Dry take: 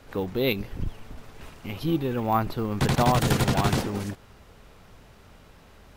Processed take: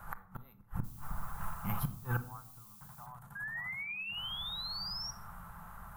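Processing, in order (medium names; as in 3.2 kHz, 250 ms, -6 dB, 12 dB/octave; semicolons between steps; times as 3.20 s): FFT filter 130 Hz 0 dB, 190 Hz +1 dB, 280 Hz -19 dB, 510 Hz -14 dB, 860 Hz +6 dB, 1.3 kHz +9 dB, 2.4 kHz -13 dB, 5 kHz -16 dB, 12 kHz +8 dB; inverted gate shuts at -23 dBFS, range -33 dB; 0.83–3.05 s: added noise violet -58 dBFS; 3.35–5.11 s: painted sound rise 1.6–5.7 kHz -42 dBFS; reverberation RT60 0.70 s, pre-delay 6 ms, DRR 10 dB; trim +1 dB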